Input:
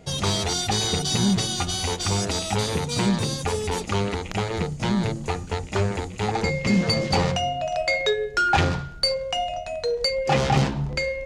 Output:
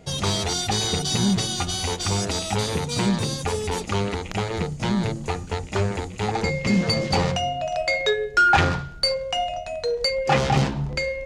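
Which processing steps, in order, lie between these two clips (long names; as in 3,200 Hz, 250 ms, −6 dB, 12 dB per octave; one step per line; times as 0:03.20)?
0:08.06–0:10.39: dynamic equaliser 1,400 Hz, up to +5 dB, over −32 dBFS, Q 1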